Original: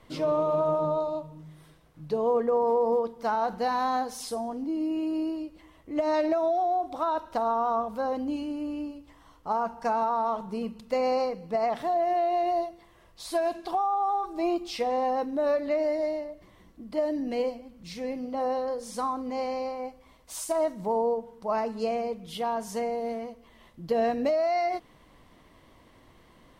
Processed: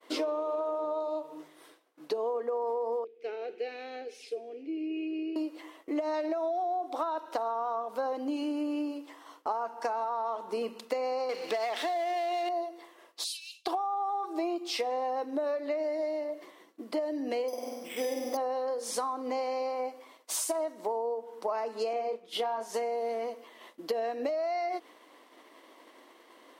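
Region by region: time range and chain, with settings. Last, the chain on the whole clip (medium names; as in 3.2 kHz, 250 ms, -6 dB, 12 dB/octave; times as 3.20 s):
3.04–5.36 s: two resonant band-passes 1 kHz, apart 2.6 oct + tape noise reduction on one side only encoder only
11.29–12.49 s: frequency weighting D + power-law waveshaper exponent 0.7
13.24–13.66 s: steep high-pass 2.6 kHz 72 dB/octave + treble shelf 10 kHz -10.5 dB
17.48–18.37 s: flutter echo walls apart 8.5 m, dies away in 0.86 s + careless resampling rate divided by 8×, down filtered, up hold
21.93–22.74 s: expander -37 dBFS + treble shelf 5.9 kHz -8 dB + doubling 27 ms -5 dB
whole clip: steep high-pass 290 Hz 36 dB/octave; compression 12:1, threshold -37 dBFS; expander -54 dBFS; trim +8 dB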